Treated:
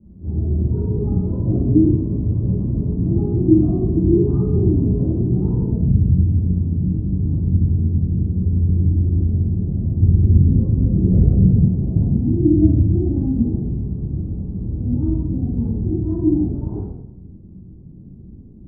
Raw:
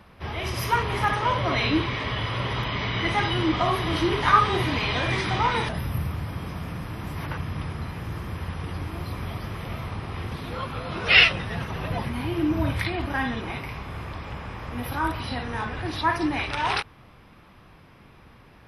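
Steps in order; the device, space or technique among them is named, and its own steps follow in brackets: next room (low-pass 310 Hz 24 dB/octave; reverberation RT60 0.85 s, pre-delay 17 ms, DRR -13 dB); 10.02–11.68 s: bass shelf 240 Hz +8.5 dB

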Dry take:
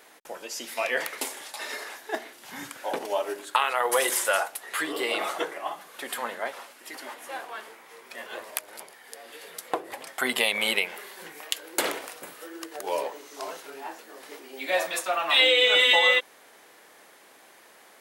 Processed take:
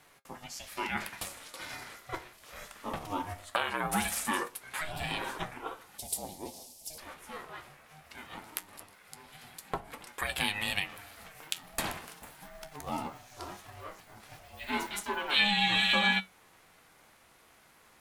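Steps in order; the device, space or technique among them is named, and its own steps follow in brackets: alien voice (ring modulator 310 Hz; flange 0.2 Hz, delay 6.7 ms, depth 7.7 ms, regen +68%); 5.98–6.98 s: FFT filter 810 Hz 0 dB, 1.4 kHz -30 dB, 5.2 kHz +11 dB

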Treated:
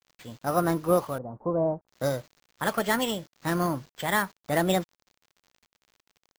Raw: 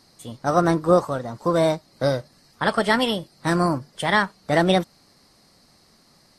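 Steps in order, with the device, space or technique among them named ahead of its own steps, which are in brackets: early 8-bit sampler (sample-rate reducer 11 kHz, jitter 0%; bit crusher 8-bit); 1.18–1.88 s: inverse Chebyshev low-pass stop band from 4.2 kHz, stop band 70 dB; trim -6 dB

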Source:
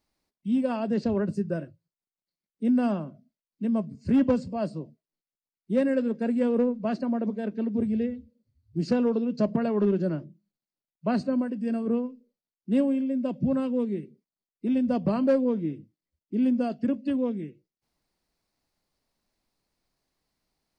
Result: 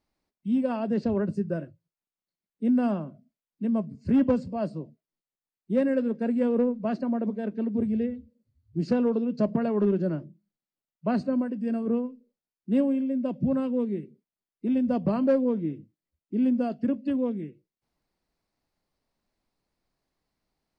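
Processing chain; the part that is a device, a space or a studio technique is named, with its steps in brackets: behind a face mask (treble shelf 3.5 kHz -7.5 dB)

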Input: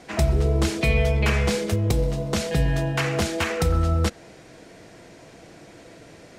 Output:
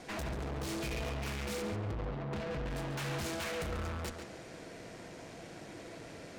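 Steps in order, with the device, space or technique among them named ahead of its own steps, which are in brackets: 1.62–2.66 s: distance through air 480 m; rockabilly slapback (valve stage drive 37 dB, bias 0.6; tape echo 138 ms, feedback 30%, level -4 dB, low-pass 4.1 kHz)

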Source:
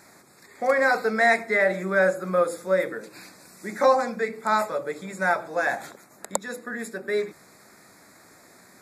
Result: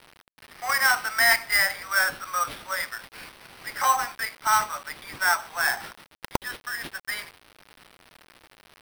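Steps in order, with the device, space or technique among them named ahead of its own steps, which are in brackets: steep high-pass 850 Hz 36 dB/octave; early 8-bit sampler (sample-rate reducer 7 kHz, jitter 0%; bit crusher 8-bit); trim +3 dB

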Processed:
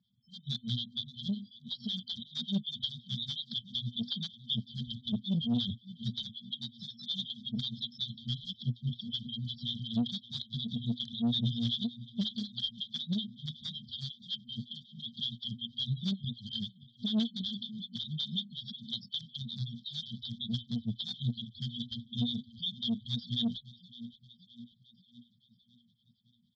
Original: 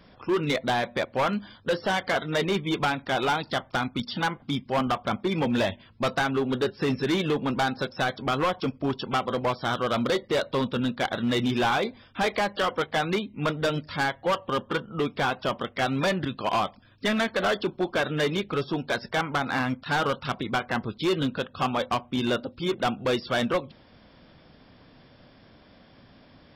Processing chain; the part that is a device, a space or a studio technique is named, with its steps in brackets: spectral noise reduction 18 dB; 6.22–7.45 s: high-pass 460 Hz 12 dB/octave; FFT band-reject 240–3100 Hz; feedback delay 586 ms, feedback 58%, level -19 dB; vibe pedal into a guitar amplifier (lamp-driven phase shifter 5.4 Hz; valve stage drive 28 dB, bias 0.25; cabinet simulation 110–4300 Hz, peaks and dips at 120 Hz +9 dB, 360 Hz -6 dB, 530 Hz -4 dB, 1.6 kHz +7 dB, 3.3 kHz +5 dB); trim +5 dB

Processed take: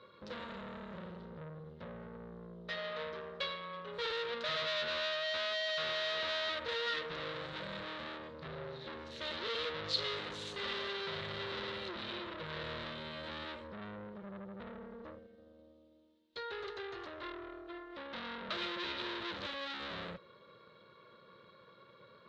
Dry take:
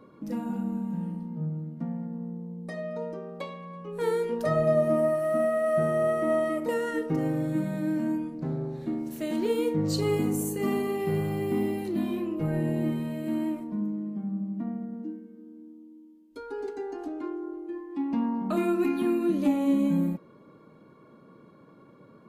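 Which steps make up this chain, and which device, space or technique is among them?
9.88–10.97 s: high-pass 150 Hz 6 dB/octave; scooped metal amplifier (valve stage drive 38 dB, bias 0.8; cabinet simulation 110–4200 Hz, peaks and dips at 150 Hz -5 dB, 360 Hz +8 dB, 520 Hz +9 dB, 770 Hz -10 dB, 2.4 kHz -4 dB, 3.8 kHz +9 dB; amplifier tone stack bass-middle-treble 10-0-10); trim +13 dB

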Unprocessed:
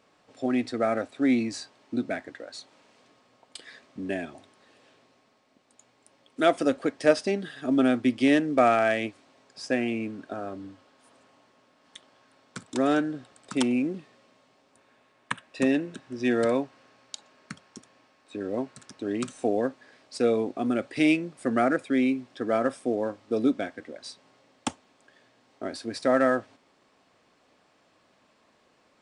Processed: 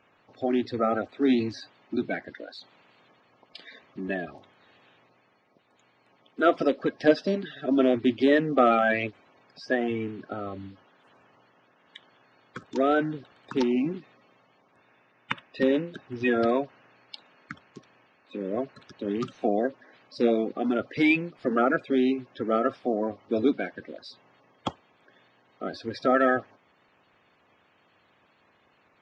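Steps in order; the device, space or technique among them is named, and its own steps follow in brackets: clip after many re-uploads (low-pass 4.6 kHz 24 dB/octave; coarse spectral quantiser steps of 30 dB); trim +1 dB

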